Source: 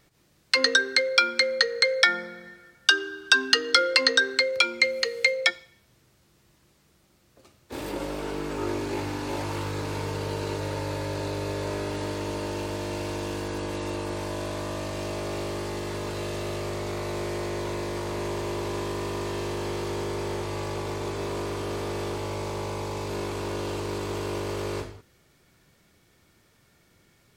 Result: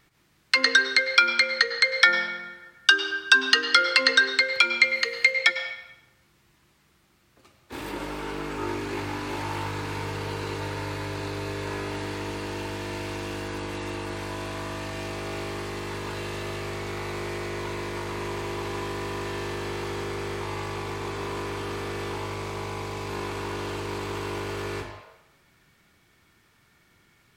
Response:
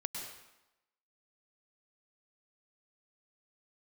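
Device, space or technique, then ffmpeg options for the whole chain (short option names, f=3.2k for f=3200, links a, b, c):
filtered reverb send: -filter_complex "[0:a]asplit=2[a][b];[b]highpass=f=560:w=0.5412,highpass=f=560:w=1.3066,lowpass=3.5k[c];[1:a]atrim=start_sample=2205[d];[c][d]afir=irnorm=-1:irlink=0,volume=-1.5dB[e];[a][e]amix=inputs=2:normalize=0,volume=-1.5dB"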